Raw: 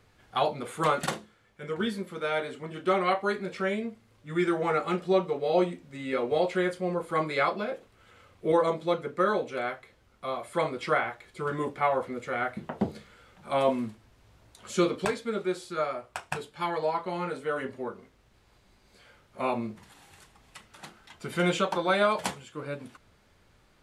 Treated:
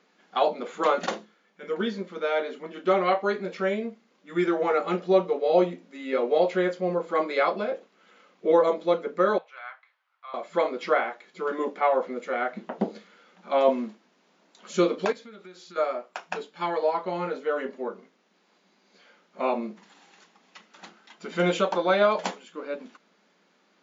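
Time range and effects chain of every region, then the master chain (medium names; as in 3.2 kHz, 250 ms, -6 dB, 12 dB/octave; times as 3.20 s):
9.38–10.34 s: high-pass 990 Hz 24 dB/octave + tape spacing loss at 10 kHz 29 dB
15.12–15.76 s: peaking EQ 450 Hz -6.5 dB 2.4 oct + compression 8:1, threshold -42 dBFS
whole clip: FFT band-pass 170–7300 Hz; dynamic bell 550 Hz, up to +5 dB, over -40 dBFS, Q 1.2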